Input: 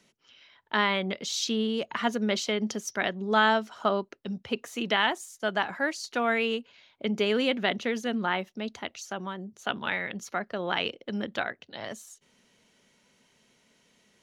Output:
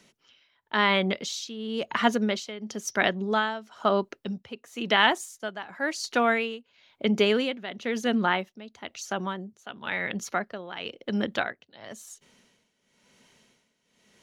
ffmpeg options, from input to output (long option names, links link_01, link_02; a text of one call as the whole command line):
ffmpeg -i in.wav -af "tremolo=f=0.98:d=0.83,volume=5dB" out.wav